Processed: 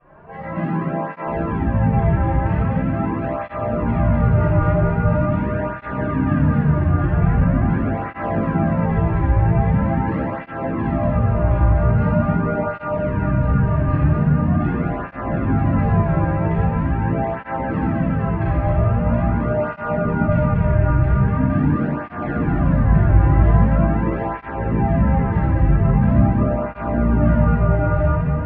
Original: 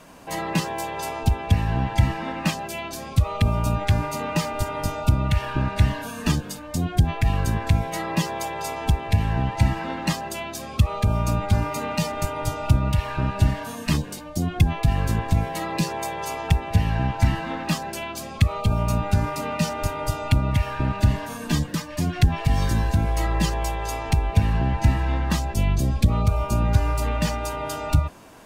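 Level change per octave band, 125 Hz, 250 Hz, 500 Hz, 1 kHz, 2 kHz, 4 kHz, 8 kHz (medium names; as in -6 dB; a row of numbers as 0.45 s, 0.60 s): +5.0 dB, +8.0 dB, +7.5 dB, +3.5 dB, +2.0 dB, under -15 dB, under -40 dB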